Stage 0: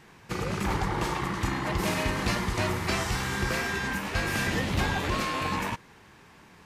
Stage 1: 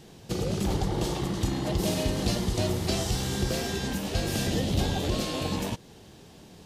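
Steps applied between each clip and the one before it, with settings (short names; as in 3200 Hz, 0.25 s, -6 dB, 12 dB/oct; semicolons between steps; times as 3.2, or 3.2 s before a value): band shelf 1500 Hz -13 dB; in parallel at 0 dB: compressor, threshold -37 dBFS, peak gain reduction 14 dB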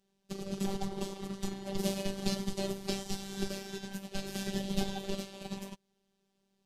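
robotiser 195 Hz; upward expander 2.5:1, over -42 dBFS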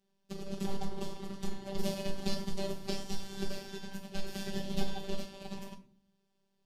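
reverb RT60 0.50 s, pre-delay 5 ms, DRR 4.5 dB; gain -4 dB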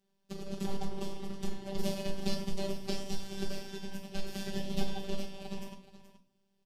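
echo 0.425 s -13.5 dB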